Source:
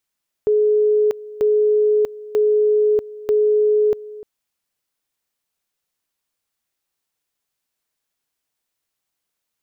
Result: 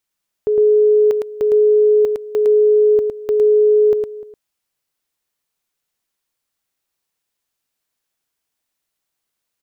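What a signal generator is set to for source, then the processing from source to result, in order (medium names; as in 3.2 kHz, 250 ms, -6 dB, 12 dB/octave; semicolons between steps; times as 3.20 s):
two-level tone 423 Hz -12.5 dBFS, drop 19 dB, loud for 0.64 s, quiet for 0.30 s, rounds 4
on a send: delay 109 ms -4 dB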